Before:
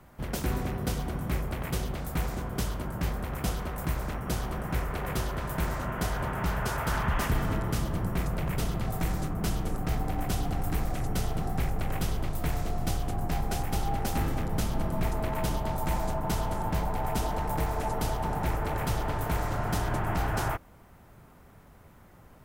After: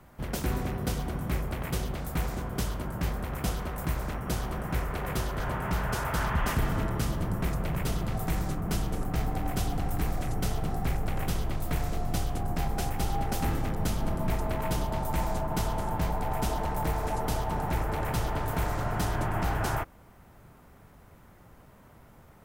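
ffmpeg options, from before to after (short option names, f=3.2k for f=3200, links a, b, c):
-filter_complex "[0:a]asplit=2[a][b];[a]atrim=end=5.402[c];[b]atrim=start=6.128[d];[c][d]acrossfade=d=0.004:c1=hsin:c2=hsin"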